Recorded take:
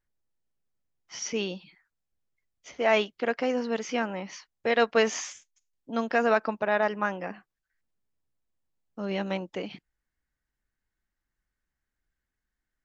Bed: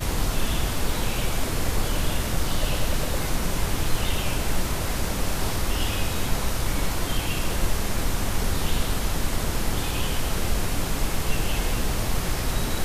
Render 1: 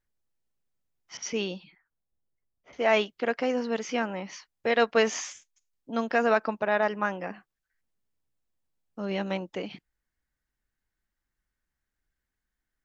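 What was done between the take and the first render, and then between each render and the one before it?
1.17–2.73 s: level-controlled noise filter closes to 920 Hz, open at -29.5 dBFS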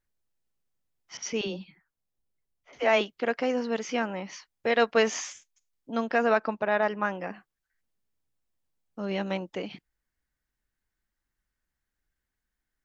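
1.41–3.01 s: phase dispersion lows, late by 65 ms, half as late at 300 Hz; 5.98–7.15 s: distance through air 53 m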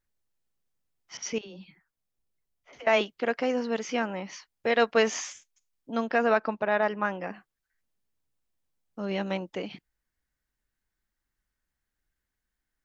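1.38–2.87 s: compression 16:1, threshold -40 dBFS; 6.08–7.23 s: low-pass 6.6 kHz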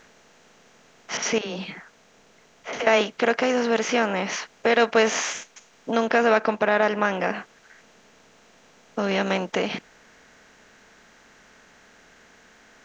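spectral levelling over time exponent 0.6; in parallel at +1 dB: compression, threshold -30 dBFS, peak gain reduction 14 dB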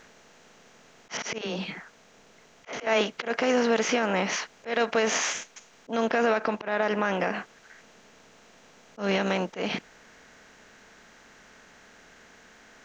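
peak limiter -14 dBFS, peak gain reduction 8 dB; slow attack 123 ms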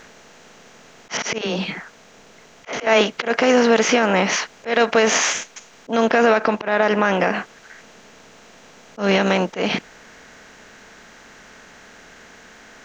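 trim +8.5 dB

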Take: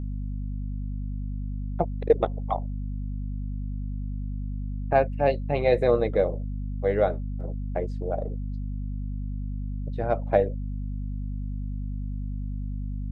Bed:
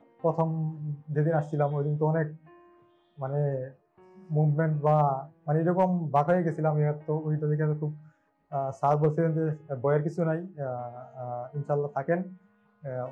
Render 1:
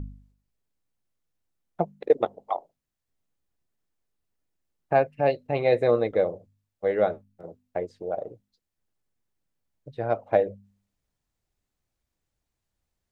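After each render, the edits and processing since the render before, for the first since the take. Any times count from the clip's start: de-hum 50 Hz, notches 5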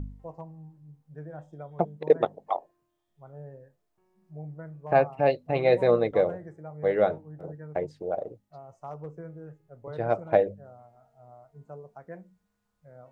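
add bed -16 dB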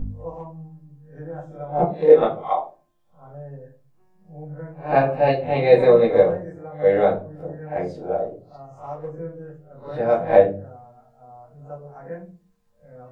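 reverse spectral sustain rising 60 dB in 0.31 s; simulated room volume 160 m³, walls furnished, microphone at 2.1 m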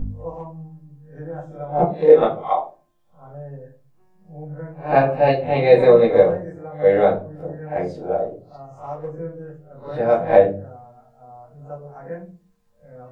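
trim +2 dB; peak limiter -1 dBFS, peak gain reduction 2 dB

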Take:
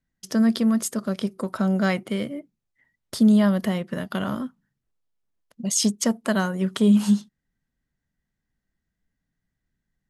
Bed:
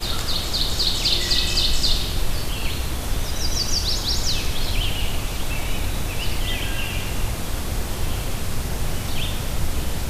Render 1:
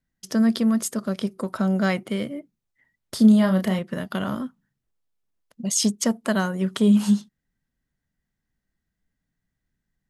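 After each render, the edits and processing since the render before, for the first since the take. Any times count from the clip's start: 3.16–3.79 s: doubling 32 ms -6 dB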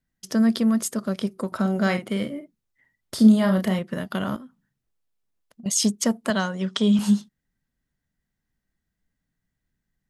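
1.47–3.58 s: doubling 50 ms -10 dB; 4.36–5.66 s: compression 10:1, threshold -39 dBFS; 6.30–6.99 s: cabinet simulation 170–7800 Hz, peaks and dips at 330 Hz -8 dB, 3.4 kHz +7 dB, 5.4 kHz +7 dB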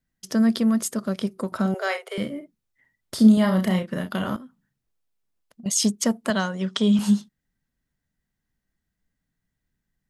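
1.74–2.18 s: Chebyshev high-pass 390 Hz, order 8; 3.34–4.36 s: doubling 33 ms -7 dB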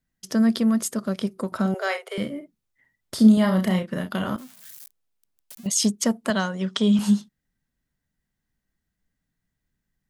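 4.38–5.67 s: zero-crossing glitches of -33 dBFS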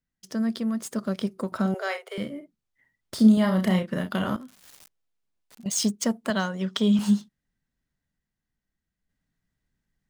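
median filter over 3 samples; random-step tremolo 1.1 Hz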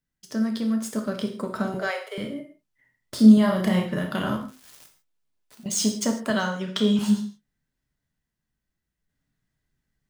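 gated-style reverb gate 180 ms falling, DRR 3 dB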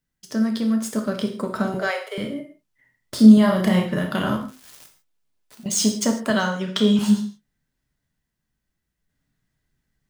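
trim +3.5 dB; peak limiter -2 dBFS, peak gain reduction 1 dB

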